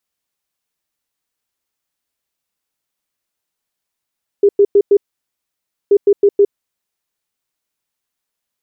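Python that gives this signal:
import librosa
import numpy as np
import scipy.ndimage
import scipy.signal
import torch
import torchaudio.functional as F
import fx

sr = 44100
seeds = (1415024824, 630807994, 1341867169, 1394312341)

y = fx.beep_pattern(sr, wave='sine', hz=404.0, on_s=0.06, off_s=0.1, beeps=4, pause_s=0.94, groups=2, level_db=-5.5)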